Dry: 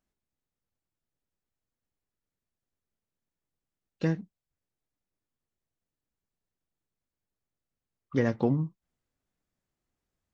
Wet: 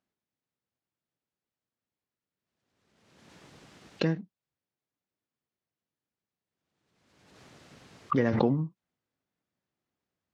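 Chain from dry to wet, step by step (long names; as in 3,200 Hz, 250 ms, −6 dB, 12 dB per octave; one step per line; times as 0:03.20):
band-pass filter 120–5,000 Hz
floating-point word with a short mantissa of 8 bits
background raised ahead of every attack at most 41 dB per second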